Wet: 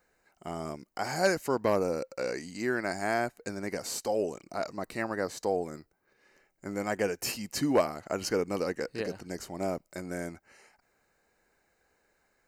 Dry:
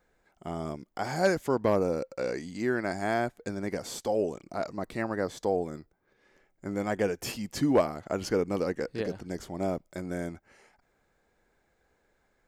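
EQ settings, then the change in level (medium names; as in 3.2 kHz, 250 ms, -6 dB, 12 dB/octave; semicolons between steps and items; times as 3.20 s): Butterworth band-stop 3.4 kHz, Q 7; tilt EQ +1.5 dB/octave; 0.0 dB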